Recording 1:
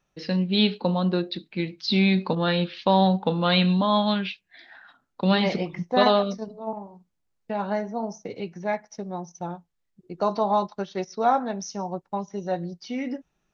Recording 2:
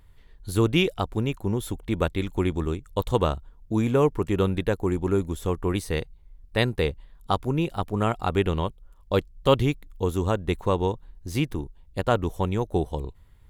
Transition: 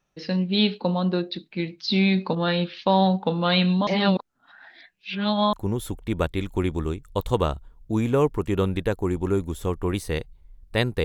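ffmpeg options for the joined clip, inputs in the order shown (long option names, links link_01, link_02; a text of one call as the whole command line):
ffmpeg -i cue0.wav -i cue1.wav -filter_complex "[0:a]apad=whole_dur=11.04,atrim=end=11.04,asplit=2[link_01][link_02];[link_01]atrim=end=3.872[link_03];[link_02]atrim=start=3.868:end=5.532,asetpts=PTS-STARTPTS,areverse[link_04];[1:a]atrim=start=1.338:end=6.85[link_05];[link_03][link_04]acrossfade=duration=0.004:curve1=hsin:curve2=hsin[link_06];[link_06][link_05]acrossfade=duration=0.004:curve1=hsin:curve2=hsin" out.wav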